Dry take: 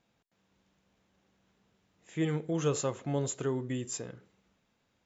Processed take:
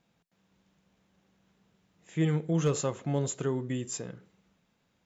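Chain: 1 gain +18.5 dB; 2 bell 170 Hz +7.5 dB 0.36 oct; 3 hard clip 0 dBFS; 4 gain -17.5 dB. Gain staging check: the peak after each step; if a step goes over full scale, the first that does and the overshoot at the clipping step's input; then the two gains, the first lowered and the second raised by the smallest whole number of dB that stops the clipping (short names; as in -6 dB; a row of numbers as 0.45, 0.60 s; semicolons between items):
+2.0, +3.5, 0.0, -17.5 dBFS; step 1, 3.5 dB; step 1 +14.5 dB, step 4 -13.5 dB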